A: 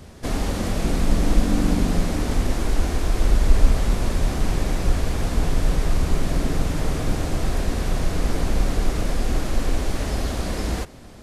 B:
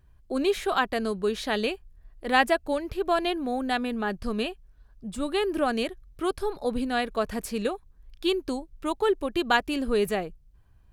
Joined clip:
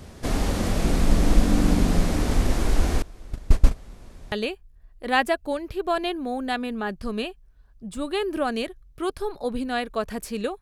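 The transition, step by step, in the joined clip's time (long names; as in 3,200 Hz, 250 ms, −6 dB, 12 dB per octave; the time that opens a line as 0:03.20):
A
0:03.02–0:04.32: noise gate −10 dBFS, range −23 dB
0:04.32: continue with B from 0:01.53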